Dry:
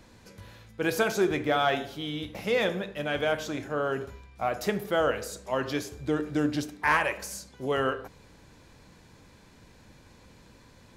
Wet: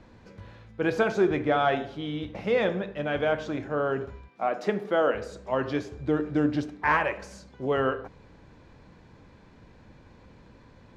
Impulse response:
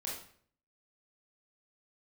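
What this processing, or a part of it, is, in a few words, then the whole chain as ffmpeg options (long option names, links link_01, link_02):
through cloth: -filter_complex "[0:a]lowpass=6500,highshelf=frequency=3200:gain=-13.5,asettb=1/sr,asplit=3[link_01][link_02][link_03];[link_01]atrim=end=4.284[link_04];[link_02]atrim=start=4.28:end=5.15,asetpts=PTS-STARTPTS,afade=type=in:duration=0.004:curve=qsin,afade=type=out:start_time=0.866:duration=0.004:curve=qsin,highpass=frequency=190:width=0.5412,highpass=frequency=190:width=1.3066[link_05];[link_03]atrim=start=5.146[link_06];[link_04][link_05]acrossfade=duration=0.004:curve1=hsin:curve2=qsin[link_07];[link_07][link_06]acrossfade=duration=0.004:curve1=qsin:curve2=hsin,volume=2.5dB"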